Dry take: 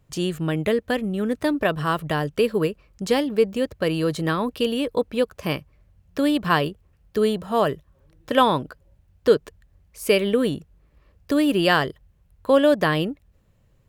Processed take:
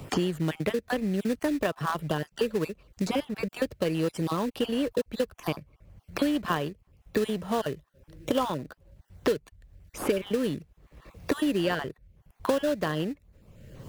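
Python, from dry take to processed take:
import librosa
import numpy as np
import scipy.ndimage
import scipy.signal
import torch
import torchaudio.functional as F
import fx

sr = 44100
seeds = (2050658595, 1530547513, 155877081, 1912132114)

p1 = fx.spec_dropout(x, sr, seeds[0], share_pct=23)
p2 = fx.sample_hold(p1, sr, seeds[1], rate_hz=2200.0, jitter_pct=20)
p3 = p1 + (p2 * 10.0 ** (-8.0 / 20.0))
p4 = fx.band_squash(p3, sr, depth_pct=100)
y = p4 * 10.0 ** (-8.0 / 20.0)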